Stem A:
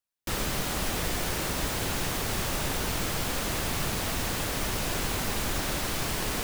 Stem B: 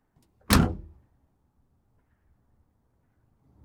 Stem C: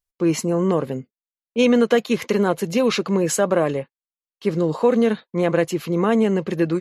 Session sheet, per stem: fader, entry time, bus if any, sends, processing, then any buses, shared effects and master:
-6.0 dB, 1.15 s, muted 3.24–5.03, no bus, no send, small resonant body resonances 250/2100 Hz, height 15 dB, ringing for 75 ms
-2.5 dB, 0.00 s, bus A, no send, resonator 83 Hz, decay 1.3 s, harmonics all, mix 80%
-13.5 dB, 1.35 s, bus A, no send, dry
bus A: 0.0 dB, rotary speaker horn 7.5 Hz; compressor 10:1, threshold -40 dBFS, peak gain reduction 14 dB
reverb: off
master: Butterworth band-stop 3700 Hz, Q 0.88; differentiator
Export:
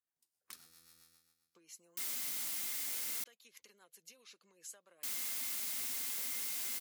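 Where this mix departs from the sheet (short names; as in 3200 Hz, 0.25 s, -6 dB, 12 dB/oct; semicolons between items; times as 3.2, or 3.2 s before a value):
stem A: entry 1.15 s -> 1.70 s; stem B -2.5 dB -> +6.0 dB; master: missing Butterworth band-stop 3700 Hz, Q 0.88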